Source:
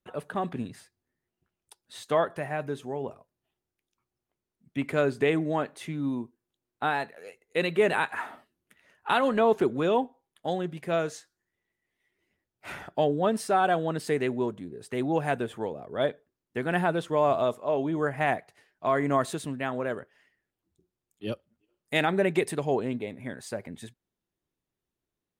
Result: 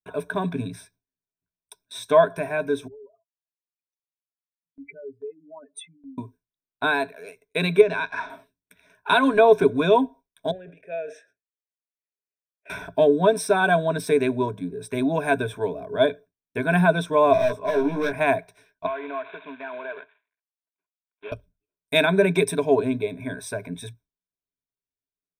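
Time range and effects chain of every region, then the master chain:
0:02.87–0:06.18: expanding power law on the bin magnitudes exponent 3.6 + first-order pre-emphasis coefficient 0.97 + comb filter 7.3 ms, depth 55%
0:07.81–0:08.30: mu-law and A-law mismatch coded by A + low-pass filter 6,100 Hz 24 dB per octave + downward compressor 3 to 1, threshold −30 dBFS
0:10.51–0:12.70: formant filter e + parametric band 4,200 Hz −15 dB 0.47 octaves + level that may fall only so fast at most 140 dB per second
0:17.33–0:18.13: high-shelf EQ 9,100 Hz −12 dB + hard clipping −28 dBFS + double-tracking delay 17 ms −4 dB
0:18.86–0:21.32: variable-slope delta modulation 16 kbit/s + high-pass filter 630 Hz + downward compressor 2.5 to 1, threshold −38 dBFS
whole clip: noise gate with hold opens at −49 dBFS; EQ curve with evenly spaced ripples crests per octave 1.6, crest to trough 17 dB; level +2.5 dB

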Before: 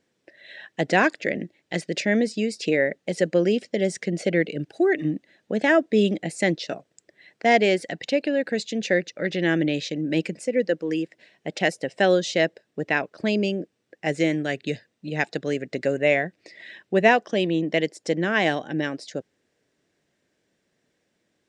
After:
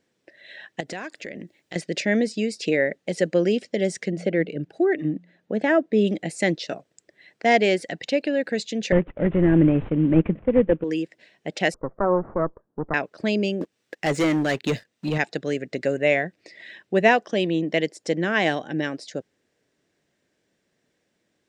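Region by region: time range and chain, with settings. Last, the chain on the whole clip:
0:00.80–0:01.76: high-shelf EQ 7,900 Hz +10 dB + downward compressor 3 to 1, threshold −34 dBFS
0:04.11–0:06.07: high-shelf EQ 2,900 Hz −11.5 dB + hum removal 87.66 Hz, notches 2
0:08.92–0:10.84: variable-slope delta modulation 16 kbit/s + spectral tilt −4 dB per octave
0:11.74–0:12.94: lower of the sound and its delayed copy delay 0.42 ms + Butterworth low-pass 1,400 Hz 48 dB per octave
0:13.61–0:15.18: hard clipping −16 dBFS + leveller curve on the samples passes 2 + one half of a high-frequency compander encoder only
whole clip: no processing

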